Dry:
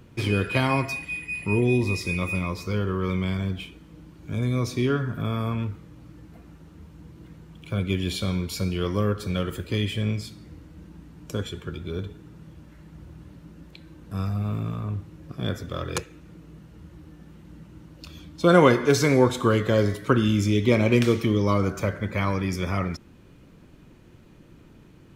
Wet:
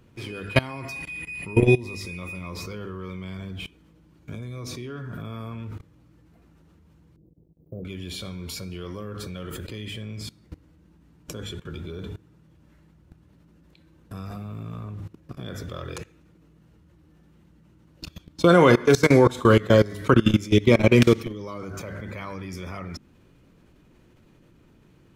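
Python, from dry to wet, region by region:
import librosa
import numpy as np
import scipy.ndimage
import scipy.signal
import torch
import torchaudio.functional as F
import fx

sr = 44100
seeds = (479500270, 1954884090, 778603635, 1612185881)

y = fx.chain(x, sr, fx.cheby2_bandstop(low_hz=1900.0, high_hz=7100.0, order=4, stop_db=70),
    fx.level_steps(step_db=14),
    fx.low_shelf(hz=330.0, db=-7.5), at=(7.16, 7.85))
y = fx.hum_notches(y, sr, base_hz=50, count=6)
y = fx.level_steps(y, sr, step_db=21)
y = y * librosa.db_to_amplitude(7.0)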